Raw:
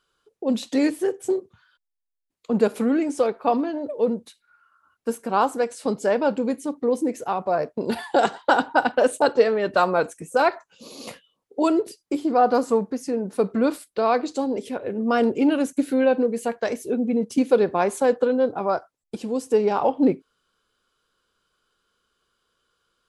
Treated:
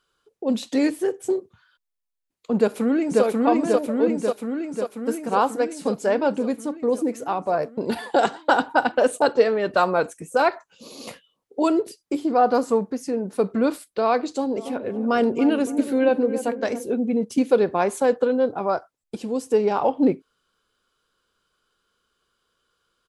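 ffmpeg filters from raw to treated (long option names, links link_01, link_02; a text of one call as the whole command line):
ffmpeg -i in.wav -filter_complex "[0:a]asplit=2[link_01][link_02];[link_02]afade=type=in:start_time=2.57:duration=0.01,afade=type=out:start_time=3.24:duration=0.01,aecho=0:1:540|1080|1620|2160|2700|3240|3780|4320|4860|5400|5940|6480:0.944061|0.660843|0.46259|0.323813|0.226669|0.158668|0.111068|0.0777475|0.0544232|0.0380963|0.0266674|0.0186672[link_03];[link_01][link_03]amix=inputs=2:normalize=0,asplit=3[link_04][link_05][link_06];[link_04]afade=type=out:start_time=14.55:duration=0.02[link_07];[link_05]asplit=2[link_08][link_09];[link_09]adelay=283,lowpass=frequency=870:poles=1,volume=-10dB,asplit=2[link_10][link_11];[link_11]adelay=283,lowpass=frequency=870:poles=1,volume=0.54,asplit=2[link_12][link_13];[link_13]adelay=283,lowpass=frequency=870:poles=1,volume=0.54,asplit=2[link_14][link_15];[link_15]adelay=283,lowpass=frequency=870:poles=1,volume=0.54,asplit=2[link_16][link_17];[link_17]adelay=283,lowpass=frequency=870:poles=1,volume=0.54,asplit=2[link_18][link_19];[link_19]adelay=283,lowpass=frequency=870:poles=1,volume=0.54[link_20];[link_08][link_10][link_12][link_14][link_16][link_18][link_20]amix=inputs=7:normalize=0,afade=type=in:start_time=14.55:duration=0.02,afade=type=out:start_time=16.91:duration=0.02[link_21];[link_06]afade=type=in:start_time=16.91:duration=0.02[link_22];[link_07][link_21][link_22]amix=inputs=3:normalize=0" out.wav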